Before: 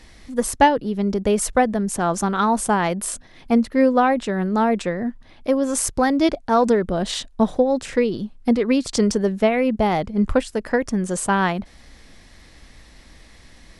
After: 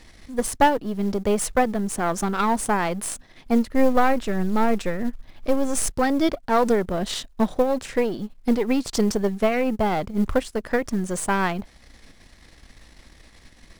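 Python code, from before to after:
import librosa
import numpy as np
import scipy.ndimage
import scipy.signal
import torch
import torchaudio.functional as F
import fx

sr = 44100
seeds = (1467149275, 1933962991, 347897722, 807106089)

y = np.where(x < 0.0, 10.0 ** (-7.0 / 20.0) * x, x)
y = fx.low_shelf(y, sr, hz=70.0, db=9.5, at=(3.69, 5.9))
y = fx.quant_float(y, sr, bits=4)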